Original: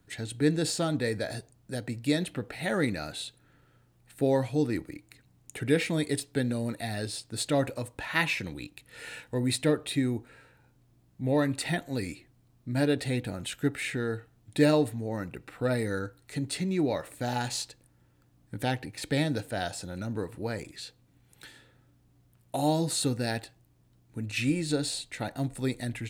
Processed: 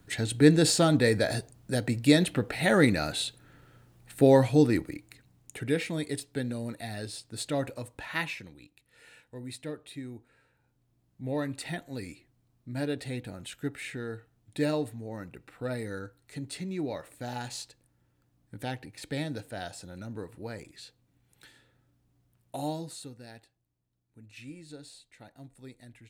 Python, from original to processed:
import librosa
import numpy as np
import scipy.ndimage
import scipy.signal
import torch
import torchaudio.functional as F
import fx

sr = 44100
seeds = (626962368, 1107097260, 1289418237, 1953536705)

y = fx.gain(x, sr, db=fx.line((4.56, 6.0), (5.84, -4.0), (8.15, -4.0), (8.56, -13.0), (10.07, -13.0), (11.25, -6.0), (22.63, -6.0), (23.12, -17.5)))